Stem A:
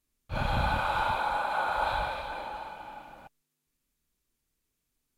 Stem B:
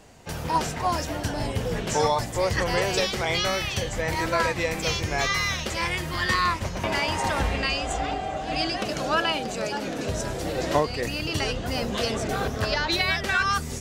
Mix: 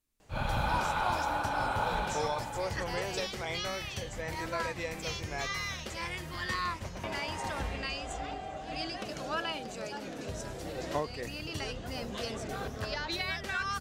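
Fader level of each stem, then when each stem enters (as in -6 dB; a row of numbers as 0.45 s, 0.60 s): -3.0 dB, -10.5 dB; 0.00 s, 0.20 s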